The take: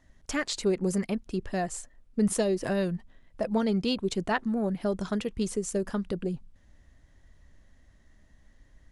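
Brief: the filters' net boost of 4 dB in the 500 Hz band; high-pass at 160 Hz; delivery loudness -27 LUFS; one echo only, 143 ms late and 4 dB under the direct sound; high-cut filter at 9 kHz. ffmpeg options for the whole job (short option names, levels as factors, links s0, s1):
-af "highpass=160,lowpass=9000,equalizer=f=500:t=o:g=5.5,aecho=1:1:143:0.631"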